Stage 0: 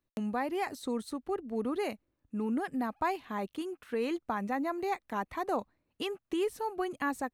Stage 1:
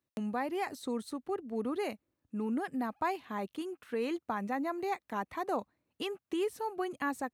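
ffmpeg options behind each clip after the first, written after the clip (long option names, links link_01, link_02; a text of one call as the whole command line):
ffmpeg -i in.wav -af "highpass=83,volume=-1.5dB" out.wav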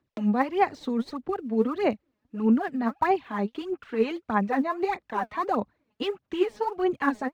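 ffmpeg -i in.wav -filter_complex "[0:a]highshelf=frequency=5200:gain=-9,acrossover=split=370|1600|6800[link_01][link_02][link_03][link_04];[link_04]acrusher=samples=32:mix=1:aa=0.000001[link_05];[link_01][link_02][link_03][link_05]amix=inputs=4:normalize=0,aphaser=in_gain=1:out_gain=1:delay=4.8:decay=0.67:speed=1.6:type=sinusoidal,volume=5.5dB" out.wav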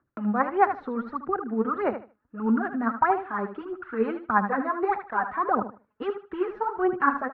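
ffmpeg -i in.wav -af "lowpass=frequency=1400:width_type=q:width=4.5,aphaser=in_gain=1:out_gain=1:delay=2.9:decay=0.28:speed=0.73:type=triangular,aecho=1:1:76|152|228:0.316|0.0664|0.0139,volume=-3dB" out.wav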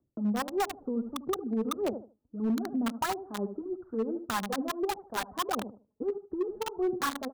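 ffmpeg -i in.wav -filter_complex "[0:a]acrossover=split=660[link_01][link_02];[link_02]acrusher=bits=3:mix=0:aa=0.000001[link_03];[link_01][link_03]amix=inputs=2:normalize=0,acompressor=threshold=-24dB:ratio=16,asoftclip=type=hard:threshold=-23.5dB" out.wav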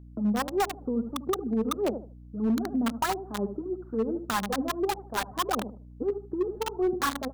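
ffmpeg -i in.wav -af "aeval=exprs='val(0)+0.00355*(sin(2*PI*60*n/s)+sin(2*PI*2*60*n/s)/2+sin(2*PI*3*60*n/s)/3+sin(2*PI*4*60*n/s)/4+sin(2*PI*5*60*n/s)/5)':channel_layout=same,volume=3dB" out.wav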